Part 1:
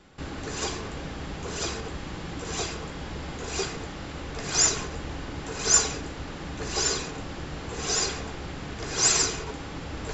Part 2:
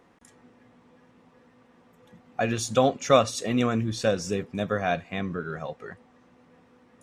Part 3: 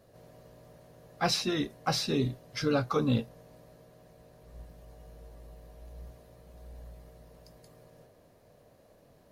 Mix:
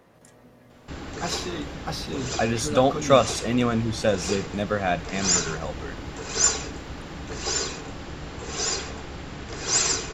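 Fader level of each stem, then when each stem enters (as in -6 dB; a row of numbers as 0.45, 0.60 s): -0.5, +1.5, -3.0 dB; 0.70, 0.00, 0.00 s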